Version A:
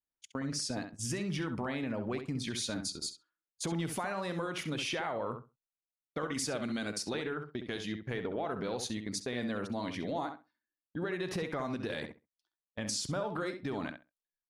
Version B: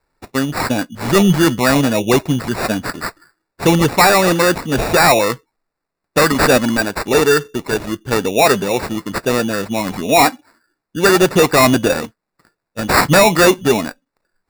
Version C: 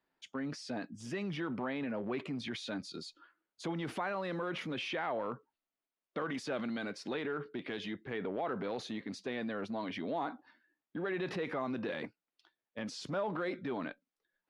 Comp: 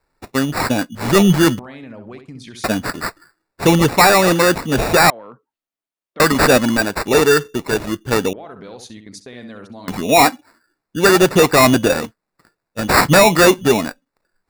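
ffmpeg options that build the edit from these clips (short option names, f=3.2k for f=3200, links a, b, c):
-filter_complex "[0:a]asplit=2[a][b];[1:a]asplit=4[c][d][e][f];[c]atrim=end=1.592[g];[a]atrim=start=1.588:end=2.642[h];[d]atrim=start=2.638:end=5.102[i];[2:a]atrim=start=5.098:end=6.202[j];[e]atrim=start=6.198:end=8.332[k];[b]atrim=start=8.328:end=9.882[l];[f]atrim=start=9.878[m];[g][h]acrossfade=d=0.004:c1=hsin:c2=hsin[n];[n][i]acrossfade=d=0.004:c1=hsin:c2=hsin[o];[o][j]acrossfade=d=0.004:c1=hsin:c2=hsin[p];[p][k]acrossfade=d=0.004:c1=hsin:c2=hsin[q];[q][l]acrossfade=d=0.004:c1=hsin:c2=hsin[r];[r][m]acrossfade=d=0.004:c1=hsin:c2=hsin"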